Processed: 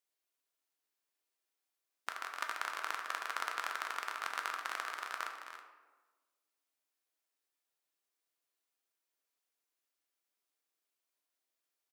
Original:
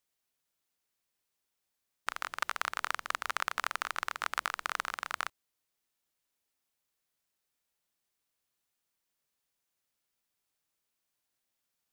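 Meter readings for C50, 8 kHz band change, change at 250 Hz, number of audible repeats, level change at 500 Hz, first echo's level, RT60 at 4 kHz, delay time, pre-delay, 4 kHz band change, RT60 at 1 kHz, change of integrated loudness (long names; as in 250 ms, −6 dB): 4.5 dB, −4.5 dB, −5.5 dB, 2, −3.0 dB, −11.5 dB, 0.65 s, 275 ms, 3 ms, −4.5 dB, 1.2 s, −4.0 dB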